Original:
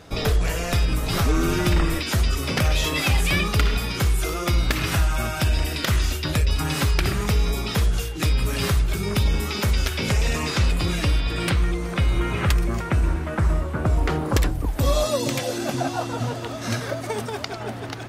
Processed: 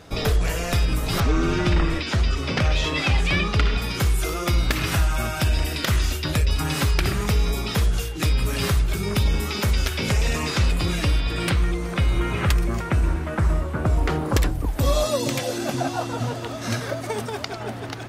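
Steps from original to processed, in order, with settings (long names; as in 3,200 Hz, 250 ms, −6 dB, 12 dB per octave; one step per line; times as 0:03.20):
0:01.20–0:03.82: low-pass filter 5,200 Hz 12 dB per octave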